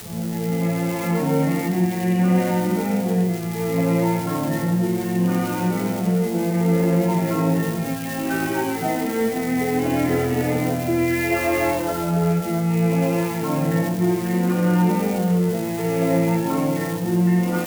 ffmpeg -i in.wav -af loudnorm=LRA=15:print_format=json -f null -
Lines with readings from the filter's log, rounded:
"input_i" : "-21.2",
"input_tp" : "-8.2",
"input_lra" : "1.3",
"input_thresh" : "-31.2",